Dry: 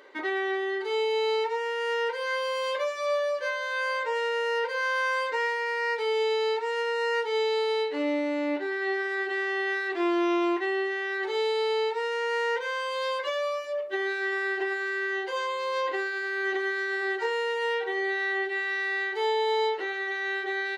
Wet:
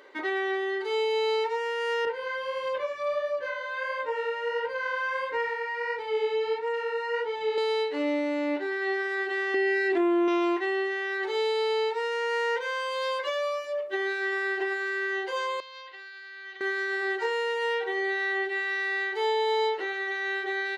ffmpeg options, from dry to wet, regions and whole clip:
-filter_complex "[0:a]asettb=1/sr,asplit=3[s0][s1][s2];[s0]atrim=end=2.054[s3];[s1]atrim=start=2.05:end=7.58,asetpts=PTS-STARTPTS,afade=t=in:d=0.004:c=qsin,afade=t=out:st=5.526:d=0.004:c=qsin,bass=f=250:g=15,treble=f=4000:g=-11,flanger=delay=17:depth=5.4:speed=1.5[s4];[s2]atrim=start=7.576[s5];[s3][s4]acrossfade=d=0.004:c1=hsin:c2=qsin[s6];[s6][s5]acrossfade=d=0.004:c1=qsin:c2=hsin,asettb=1/sr,asplit=3[s7][s8][s9];[s7]atrim=end=9.544[s10];[s8]atrim=start=9.54:end=10.28,asetpts=PTS-STARTPTS,afade=t=in:d=0.004:c=qsin,afade=t=out:st=0.736:d=0.004:c=qsin,lowshelf=f=500:g=9,aecho=1:1:3:0.87,atrim=end_sample=32634,acompressor=threshold=0.0891:ratio=5:attack=3.2:release=140:knee=1:detection=peak[s11];[s9]atrim=start=10.276[s12];[s10][s11]acrossfade=d=0.004:c1=hsin:c2=qsin[s13];[s13][s12]acrossfade=d=0.004:c1=qsin:c2=hsin,asettb=1/sr,asplit=3[s14][s15][s16];[s14]atrim=end=15.604[s17];[s15]atrim=start=15.6:end=16.61,asetpts=PTS-STARTPTS,afade=t=in:d=0.004:c=qsin,afade=t=out:st=1.006:d=0.004:c=qsin,lowpass=f=4500:w=0.5412,lowpass=f=4500:w=1.3066,aderivative[s18];[s16]atrim=start=16.606[s19];[s17][s18]acrossfade=d=0.004:c1=hsin:c2=qsin[s20];[s20][s19]acrossfade=d=0.004:c1=qsin:c2=hsin"

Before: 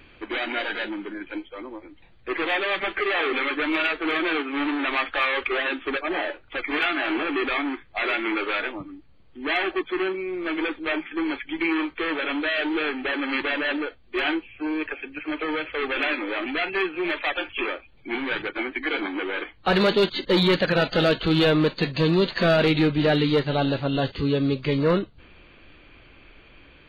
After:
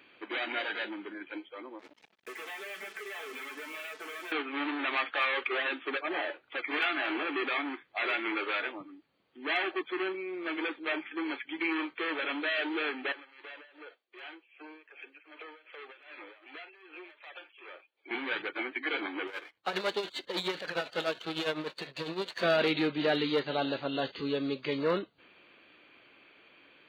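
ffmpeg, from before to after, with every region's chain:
-filter_complex "[0:a]asettb=1/sr,asplit=3[s0][s1][s2];[s0]atrim=end=1.794[s3];[s1]atrim=start=1.79:end=4.32,asetpts=PTS-STARTPTS,afade=t=in:d=0.004:c=qsin,afade=t=out:st=2.526:d=0.004:c=qsin,aecho=1:1:4.6:0.75,atrim=end_sample=111573,acompressor=threshold=0.0224:ratio=6:attack=3.2:release=140:knee=1:detection=peak,acrusher=bits=6:mix=0:aa=0.5[s4];[s2]atrim=start=4.316[s5];[s3][s4]acrossfade=d=0.004:c1=hsin:c2=qsin[s6];[s6][s5]acrossfade=d=0.004:c1=qsin:c2=hsin,asettb=1/sr,asplit=3[s7][s8][s9];[s7]atrim=end=13.124[s10];[s8]atrim=start=13.12:end=18.11,asetpts=PTS-STARTPTS,afade=t=in:d=0.004:c=qsin,afade=t=out:st=4.986:d=0.004:c=qsin,highpass=f=360:w=0.5412,highpass=f=360:w=1.3066,acompressor=threshold=0.0158:ratio=6:attack=3.2:release=140:knee=1:detection=peak,tremolo=f=2.6:d=0.82[s11];[s9]atrim=start=18.106[s12];[s10][s11]acrossfade=d=0.004:c1=hsin:c2=qsin[s13];[s13][s12]acrossfade=d=0.004:c1=qsin:c2=hsin,asettb=1/sr,asplit=3[s14][s15][s16];[s14]atrim=end=19.274[s17];[s15]atrim=start=19.27:end=22.43,asetpts=PTS-STARTPTS,afade=t=in:d=0.004:c=qsin,afade=t=out:st=3.156:d=0.004:c=qsin,aeval=exprs='if(lt(val(0),0),0.447*val(0),val(0))':c=same,equalizer=f=240:w=2:g=-6,tremolo=f=9.9:d=0.68[s18];[s16]atrim=start=22.426[s19];[s17][s18]acrossfade=d=0.004:c1=hsin:c2=qsin[s20];[s20][s19]acrossfade=d=0.004:c1=qsin:c2=hsin,highpass=240,lowshelf=f=430:g=-3.5,volume=0.531"

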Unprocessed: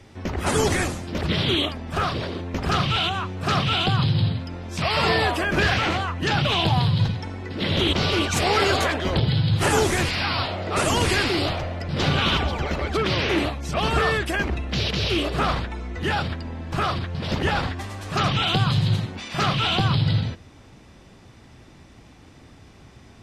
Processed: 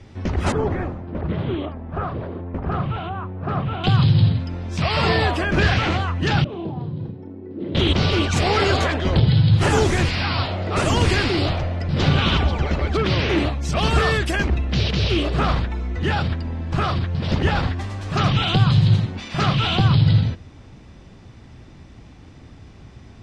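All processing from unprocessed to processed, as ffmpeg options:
-filter_complex "[0:a]asettb=1/sr,asplit=3[s0][s1][s2];[s0]atrim=end=0.524[s3];[s1]atrim=start=0.52:end=3.84,asetpts=PTS-STARTPTS,afade=t=in:d=0.004:c=qsin,afade=t=out:st=3.316:d=0.004:c=qsin,lowpass=1100,lowshelf=f=340:g=-6[s4];[s2]atrim=start=3.836[s5];[s3][s4]acrossfade=d=0.004:c1=hsin:c2=qsin[s6];[s6][s5]acrossfade=d=0.004:c1=qsin:c2=hsin,asettb=1/sr,asplit=3[s7][s8][s9];[s7]atrim=end=6.444[s10];[s8]atrim=start=6.44:end=7.75,asetpts=PTS-STARTPTS,afade=t=in:d=0.004:c=qsin,afade=t=out:st=1.306:d=0.004:c=qsin,bandpass=f=330:t=q:w=2.6,asplit=2[s11][s12];[s12]adelay=32,volume=0.473[s13];[s11][s13]amix=inputs=2:normalize=0,atrim=end_sample=57771[s14];[s9]atrim=start=7.746[s15];[s10][s14]acrossfade=d=0.004:c1=hsin:c2=qsin[s16];[s16][s15]acrossfade=d=0.004:c1=qsin:c2=hsin,asettb=1/sr,asplit=3[s17][s18][s19];[s17]atrim=end=13.614[s20];[s18]atrim=start=13.61:end=14.47,asetpts=PTS-STARTPTS,afade=t=in:d=0.004:c=qsin,afade=t=out:st=0.856:d=0.004:c=qsin,highshelf=f=5400:g=11,asoftclip=type=hard:threshold=0.266[s21];[s19]atrim=start=14.466[s22];[s20][s21]acrossfade=d=0.004:c1=hsin:c2=qsin[s23];[s23][s22]acrossfade=d=0.004:c1=qsin:c2=hsin,lowpass=7100,lowshelf=f=230:g=7.5"

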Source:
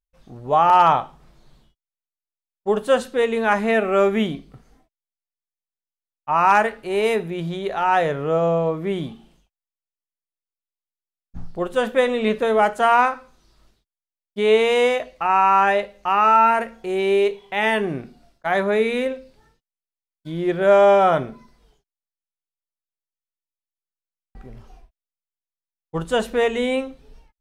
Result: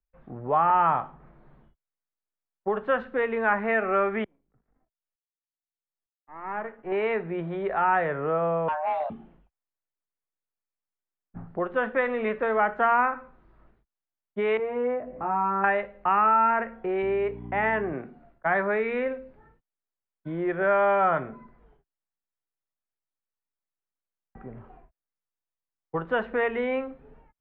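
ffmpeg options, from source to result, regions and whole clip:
-filter_complex "[0:a]asettb=1/sr,asplit=3[s0][s1][s2];[s0]atrim=end=4.244[s3];[s1]atrim=start=4.24:end=6.92,asetpts=PTS-STARTPTS,afade=t=in:d=0.004:c=qsin,afade=t=out:st=2.676:d=0.004:c=qsin,aeval=exprs='if(lt(val(0),0),0.251*val(0),val(0))':c=same,lowpass=3300,aeval=exprs='val(0)*pow(10,-34*if(lt(mod(-1.1*n/s,1),2*abs(-1.1)/1000),1-mod(-1.1*n/s,1)/(2*abs(-1.1)/1000),(mod(-1.1*n/s,1)-2*abs(-1.1)/1000)/(1-2*abs(-1.1)/1000))/20)':c=same[s4];[s2]atrim=start=6.916[s5];[s3][s4]acrossfade=d=0.004:c1=hsin:c2=qsin[s6];[s6][s5]acrossfade=d=0.004:c1=qsin:c2=hsin,asettb=1/sr,asplit=3[s7][s8][s9];[s7]atrim=end=8.684[s10];[s8]atrim=start=8.68:end=9.1,asetpts=PTS-STARTPTS,afade=t=in:d=0.004:c=qsin,afade=t=out:st=0.416:d=0.004:c=qsin,afreqshift=440,volume=12.6,asoftclip=hard,volume=0.0794,asplit=2[s11][s12];[s12]adelay=13,volume=0.211[s13];[s11][s13]amix=inputs=2:normalize=0,atrim=end_sample=18522[s14];[s9]atrim=start=9.096[s15];[s10][s14]acrossfade=d=0.004:c1=hsin:c2=qsin[s16];[s16][s15]acrossfade=d=0.004:c1=qsin:c2=hsin,asettb=1/sr,asplit=3[s17][s18][s19];[s17]atrim=end=14.574[s20];[s18]atrim=start=14.57:end=15.64,asetpts=PTS-STARTPTS,afade=t=in:d=0.004:c=qsin,afade=t=out:st=1.066:d=0.004:c=qsin,acompressor=mode=upward:threshold=0.0708:ratio=2.5:attack=3.2:release=140:knee=2.83:detection=peak,bandpass=f=220:t=q:w=0.79,asplit=2[s21][s22];[s22]adelay=20,volume=0.631[s23];[s21][s23]amix=inputs=2:normalize=0,atrim=end_sample=47187[s24];[s19]atrim=start=15.636[s25];[s20][s24]acrossfade=d=0.004:c1=hsin:c2=qsin[s26];[s26][s25]acrossfade=d=0.004:c1=qsin:c2=hsin,asettb=1/sr,asplit=3[s27][s28][s29];[s27]atrim=end=17.024[s30];[s28]atrim=start=17.02:end=17.93,asetpts=PTS-STARTPTS,afade=t=in:d=0.004:c=qsin,afade=t=out:st=0.906:d=0.004:c=qsin,lowpass=f=1900:p=1,aeval=exprs='val(0)+0.0355*(sin(2*PI*60*n/s)+sin(2*PI*2*60*n/s)/2+sin(2*PI*3*60*n/s)/3+sin(2*PI*4*60*n/s)/4+sin(2*PI*5*60*n/s)/5)':c=same[s31];[s29]atrim=start=17.926[s32];[s30][s31]acrossfade=d=0.004:c1=hsin:c2=qsin[s33];[s33][s32]acrossfade=d=0.004:c1=qsin:c2=hsin,lowpass=f=1900:w=0.5412,lowpass=f=1900:w=1.3066,acrossover=split=100|360|1100[s34][s35][s36][s37];[s34]acompressor=threshold=0.00141:ratio=4[s38];[s35]acompressor=threshold=0.0112:ratio=4[s39];[s36]acompressor=threshold=0.0282:ratio=4[s40];[s37]acompressor=threshold=0.0631:ratio=4[s41];[s38][s39][s40][s41]amix=inputs=4:normalize=0,volume=1.26"

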